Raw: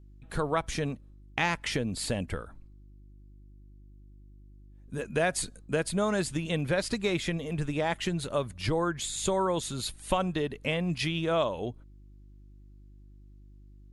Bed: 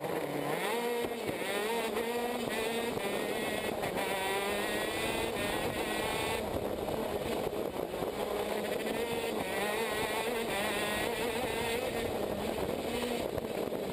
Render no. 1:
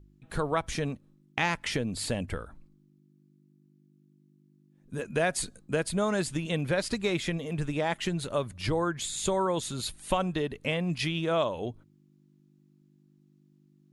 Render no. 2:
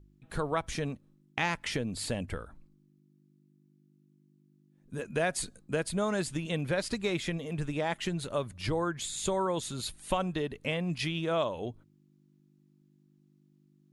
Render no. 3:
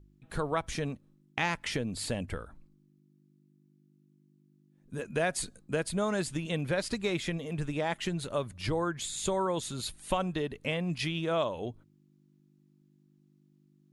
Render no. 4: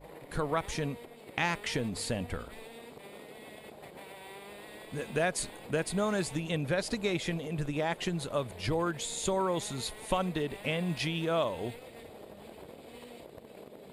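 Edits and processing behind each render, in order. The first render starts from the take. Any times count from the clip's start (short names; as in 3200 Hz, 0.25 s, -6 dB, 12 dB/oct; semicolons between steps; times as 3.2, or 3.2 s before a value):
de-hum 50 Hz, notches 2
gain -2.5 dB
nothing audible
add bed -14.5 dB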